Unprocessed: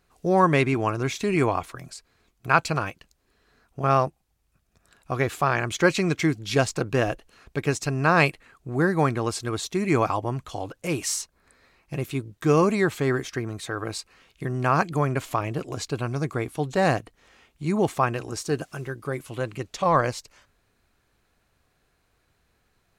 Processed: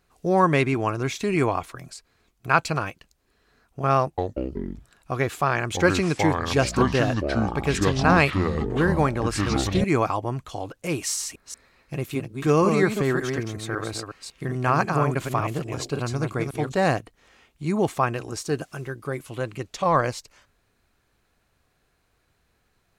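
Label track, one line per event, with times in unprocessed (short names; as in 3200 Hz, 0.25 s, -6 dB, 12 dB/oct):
3.990000	9.840000	echoes that change speed 0.187 s, each echo -6 st, echoes 3
10.990000	16.720000	reverse delay 0.184 s, level -5 dB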